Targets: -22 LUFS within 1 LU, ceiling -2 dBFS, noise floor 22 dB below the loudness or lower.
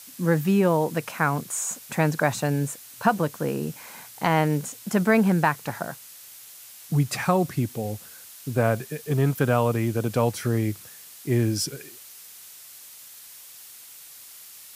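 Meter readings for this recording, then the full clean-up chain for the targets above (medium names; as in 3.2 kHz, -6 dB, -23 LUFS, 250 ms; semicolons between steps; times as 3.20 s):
noise floor -46 dBFS; noise floor target -47 dBFS; loudness -24.5 LUFS; peak level -6.5 dBFS; loudness target -22.0 LUFS
-> noise reduction 6 dB, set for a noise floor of -46 dBFS; trim +2.5 dB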